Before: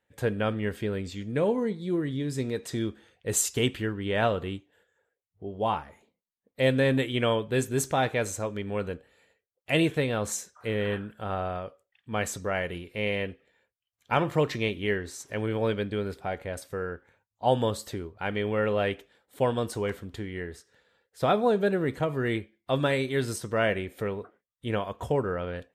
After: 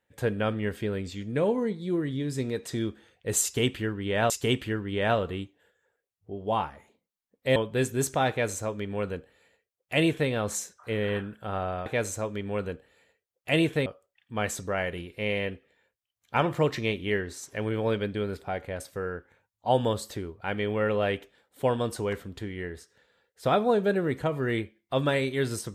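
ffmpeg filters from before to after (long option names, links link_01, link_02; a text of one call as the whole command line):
ffmpeg -i in.wav -filter_complex "[0:a]asplit=5[link_01][link_02][link_03][link_04][link_05];[link_01]atrim=end=4.302[link_06];[link_02]atrim=start=3.428:end=6.692[link_07];[link_03]atrim=start=7.328:end=11.632[link_08];[link_04]atrim=start=8.068:end=10.072[link_09];[link_05]atrim=start=11.628[link_10];[link_06][link_07]acrossfade=duration=0.004:curve1=hsin:curve2=hsin[link_11];[link_11][link_08]acrossfade=duration=0.004:curve1=hsin:curve2=hsin[link_12];[link_12][link_09]acrossfade=duration=0.004:curve1=hsin:curve2=hsin[link_13];[link_13][link_10]acrossfade=duration=0.004:curve1=hsin:curve2=hsin" out.wav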